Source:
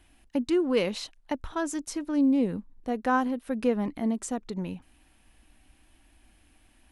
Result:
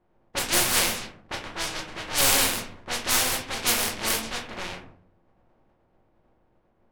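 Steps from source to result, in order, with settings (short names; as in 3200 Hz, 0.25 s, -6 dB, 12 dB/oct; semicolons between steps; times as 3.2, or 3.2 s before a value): spectral contrast lowered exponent 0.1; shoebox room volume 100 m³, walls mixed, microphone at 0.97 m; low-pass opened by the level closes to 630 Hz, open at -20.5 dBFS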